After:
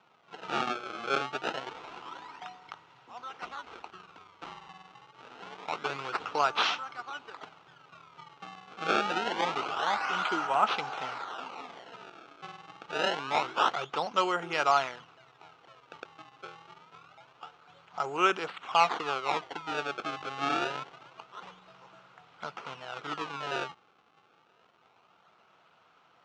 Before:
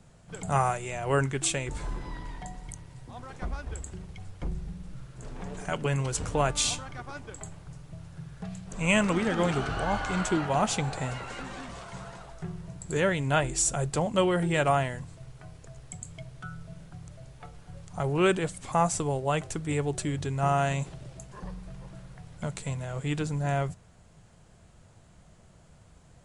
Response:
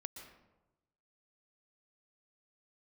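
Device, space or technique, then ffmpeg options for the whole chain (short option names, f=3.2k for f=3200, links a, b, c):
circuit-bent sampling toy: -af "acrusher=samples=26:mix=1:aa=0.000001:lfo=1:lforange=41.6:lforate=0.26,highpass=510,equalizer=f=580:t=q:w=4:g=-6,equalizer=f=860:t=q:w=4:g=3,equalizer=f=1.3k:t=q:w=4:g=9,equalizer=f=1.8k:t=q:w=4:g=-5,equalizer=f=2.8k:t=q:w=4:g=4,equalizer=f=4.8k:t=q:w=4:g=-5,lowpass=f=5.2k:w=0.5412,lowpass=f=5.2k:w=1.3066"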